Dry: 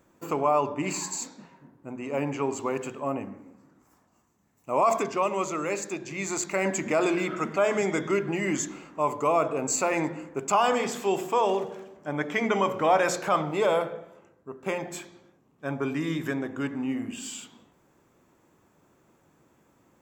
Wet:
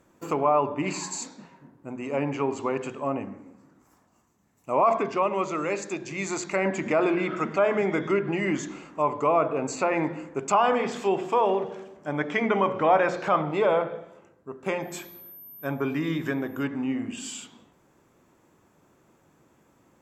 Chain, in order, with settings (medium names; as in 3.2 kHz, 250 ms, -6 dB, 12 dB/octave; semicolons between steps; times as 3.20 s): 14.81–16.64 s: whistle 13 kHz -42 dBFS; low-pass that closes with the level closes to 2.5 kHz, closed at -21.5 dBFS; trim +1.5 dB